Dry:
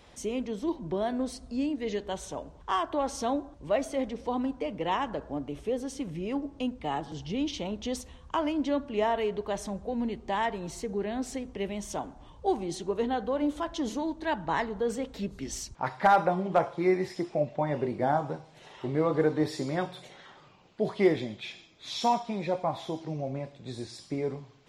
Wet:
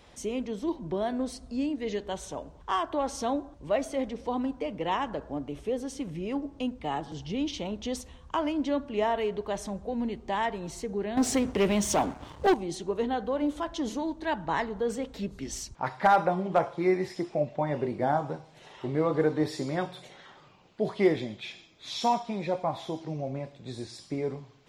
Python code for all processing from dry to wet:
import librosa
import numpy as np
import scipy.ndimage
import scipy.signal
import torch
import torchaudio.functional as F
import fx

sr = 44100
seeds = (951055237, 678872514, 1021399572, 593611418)

y = fx.chain(x, sr, fx.highpass(hz=58.0, slope=24),
    fx.leveller(passes=3), at=(11.17, 12.54))